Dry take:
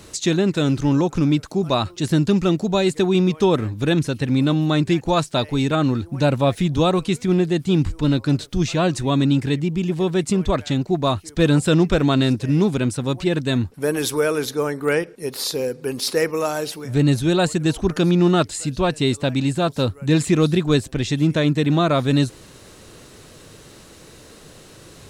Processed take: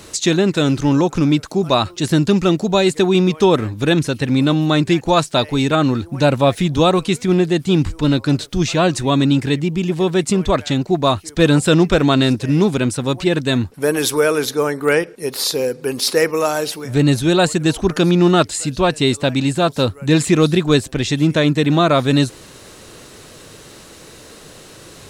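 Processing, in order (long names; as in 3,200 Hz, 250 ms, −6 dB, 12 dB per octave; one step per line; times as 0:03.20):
low-shelf EQ 250 Hz −5 dB
level +5.5 dB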